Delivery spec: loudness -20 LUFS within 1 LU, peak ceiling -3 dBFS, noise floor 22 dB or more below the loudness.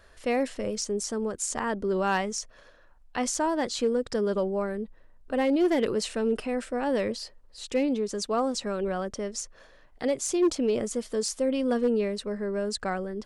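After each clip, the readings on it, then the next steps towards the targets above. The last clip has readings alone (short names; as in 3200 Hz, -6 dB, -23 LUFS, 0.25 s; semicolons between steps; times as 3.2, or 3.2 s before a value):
clipped 0.3%; flat tops at -17.5 dBFS; loudness -28.5 LUFS; peak -17.5 dBFS; loudness target -20.0 LUFS
-> clip repair -17.5 dBFS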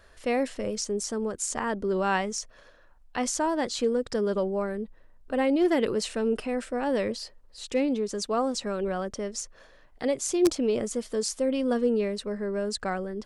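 clipped 0.0%; loudness -28.5 LUFS; peak -8.5 dBFS; loudness target -20.0 LUFS
-> gain +8.5 dB; limiter -3 dBFS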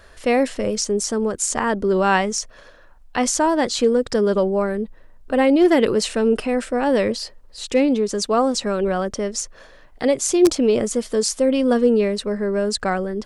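loudness -20.0 LUFS; peak -3.0 dBFS; noise floor -47 dBFS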